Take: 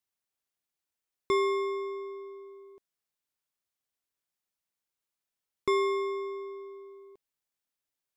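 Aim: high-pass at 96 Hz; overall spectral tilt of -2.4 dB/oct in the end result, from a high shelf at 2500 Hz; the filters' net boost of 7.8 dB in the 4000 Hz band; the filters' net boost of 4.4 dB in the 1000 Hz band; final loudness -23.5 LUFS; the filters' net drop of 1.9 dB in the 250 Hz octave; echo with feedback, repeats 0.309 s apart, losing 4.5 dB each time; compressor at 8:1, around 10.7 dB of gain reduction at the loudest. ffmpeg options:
-af "highpass=96,equalizer=f=250:t=o:g=-6.5,equalizer=f=1k:t=o:g=3.5,highshelf=f=2.5k:g=7.5,equalizer=f=4k:t=o:g=3,acompressor=threshold=-32dB:ratio=8,aecho=1:1:309|618|927|1236|1545|1854|2163|2472|2781:0.596|0.357|0.214|0.129|0.0772|0.0463|0.0278|0.0167|0.01,volume=15dB"

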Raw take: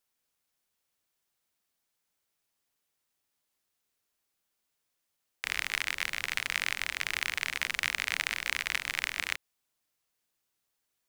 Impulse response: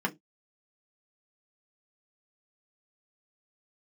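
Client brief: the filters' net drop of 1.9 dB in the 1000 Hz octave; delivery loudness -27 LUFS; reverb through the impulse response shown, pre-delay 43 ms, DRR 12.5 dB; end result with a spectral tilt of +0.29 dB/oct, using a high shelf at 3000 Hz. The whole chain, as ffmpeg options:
-filter_complex "[0:a]equalizer=f=1k:t=o:g=-4,highshelf=f=3k:g=7,asplit=2[a][b];[1:a]atrim=start_sample=2205,adelay=43[c];[b][c]afir=irnorm=-1:irlink=0,volume=-20.5dB[d];[a][d]amix=inputs=2:normalize=0,volume=2dB"

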